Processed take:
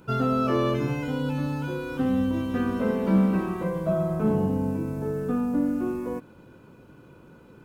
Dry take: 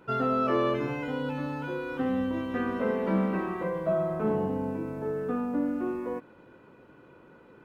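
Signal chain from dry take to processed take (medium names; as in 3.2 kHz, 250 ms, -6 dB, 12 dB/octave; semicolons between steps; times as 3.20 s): tone controls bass +10 dB, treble +12 dB; band-stop 1.9 kHz, Q 11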